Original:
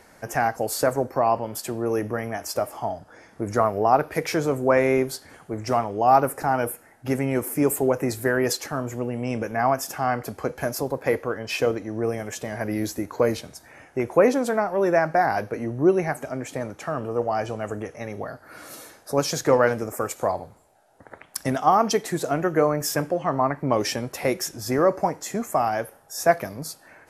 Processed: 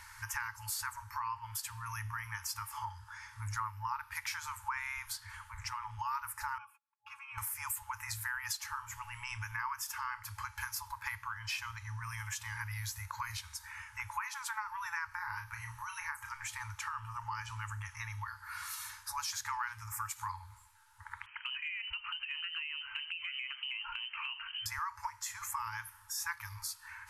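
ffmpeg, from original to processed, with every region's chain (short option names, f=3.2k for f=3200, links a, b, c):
-filter_complex "[0:a]asettb=1/sr,asplit=3[a][b][c];[a]atrim=end=5.134[d];[b]atrim=start=5.13:end=5.99,asetpts=PTS-STARTPTS,afade=t=in:d=0.004:c=qsin,afade=t=out:st=0.856:d=0.004:c=qsin,bass=f=250:g=6,treble=f=4k:g=-4,acompressor=threshold=-25dB:ratio=2.5:attack=3.2:release=140:knee=1:detection=peak,afreqshift=14[e];[c]atrim=start=5.986[f];[d][e]acrossfade=d=0.004:c1=hsin:c2=qsin[g];[g][f]acrossfade=d=0.004:c1=qsin:c2=hsin,asettb=1/sr,asplit=3[h][i][j];[h]atrim=end=6.584[k];[i]atrim=start=6.58:end=7.38,asetpts=PTS-STARTPTS,afade=t=in:d=0.004:c=qsin,afade=t=out:st=0.796:d=0.004:c=qsin,asplit=3[l][m][n];[l]bandpass=f=730:t=q:w=8,volume=0dB[o];[m]bandpass=f=1.09k:t=q:w=8,volume=-6dB[p];[n]bandpass=f=2.44k:t=q:w=8,volume=-9dB[q];[o][p][q]amix=inputs=3:normalize=0,aecho=1:1:3.6:0.84,atrim=end_sample=35280,agate=range=-31dB:threshold=-59dB:ratio=16:release=100:detection=peak[r];[j]atrim=start=7.376[s];[k][r]acrossfade=d=0.004:c1=hsin:c2=qsin[t];[t][s]acrossfade=d=0.004:c1=qsin:c2=hsin,asettb=1/sr,asplit=3[u][v][w];[u]atrim=end=15.084[x];[v]atrim=start=15.08:end=16.3,asetpts=PTS-STARTPTS,afade=t=in:d=0.004:c=qsin,afade=t=out:st=1.216:d=0.004:c=qsin,highshelf=f=9.5k:g=9,acrossover=split=260|1900[y][z][aa];[y]acompressor=threshold=-34dB:ratio=4[ab];[z]acompressor=threshold=-22dB:ratio=4[ac];[aa]acompressor=threshold=-46dB:ratio=4[ad];[ab][ac][ad]amix=inputs=3:normalize=0,asplit=2[ae][af];[af]adelay=34,volume=-6.5dB[ag];[ae][ag]amix=inputs=2:normalize=0,atrim=end_sample=53802[ah];[w]atrim=start=16.296[ai];[x][ah]acrossfade=d=0.004:c1=hsin:c2=qsin[aj];[aj][ai]acrossfade=d=0.004:c1=qsin:c2=hsin,asettb=1/sr,asplit=3[ak][al][am];[ak]atrim=end=21.264[an];[al]atrim=start=21.26:end=24.66,asetpts=PTS-STARTPTS,afade=t=in:d=0.004:c=qsin,afade=t=out:st=3.396:d=0.004:c=qsin,lowpass=f=2.7k:t=q:w=0.5098,lowpass=f=2.7k:t=q:w=0.6013,lowpass=f=2.7k:t=q:w=0.9,lowpass=f=2.7k:t=q:w=2.563,afreqshift=-3200,acompressor=threshold=-34dB:ratio=4:attack=3.2:release=140:knee=1:detection=peak[ao];[am]atrim=start=24.656[ap];[an][ao]acrossfade=d=0.004:c1=hsin:c2=qsin[aq];[aq][ap]acrossfade=d=0.004:c1=qsin:c2=hsin,afftfilt=real='re*(1-between(b*sr/4096,110,840))':imag='im*(1-between(b*sr/4096,110,840))':win_size=4096:overlap=0.75,acompressor=threshold=-42dB:ratio=3,volume=2.5dB"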